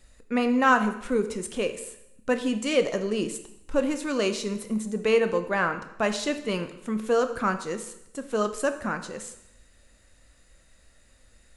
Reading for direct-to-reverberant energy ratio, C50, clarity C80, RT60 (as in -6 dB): 8.0 dB, 11.0 dB, 13.5 dB, 0.85 s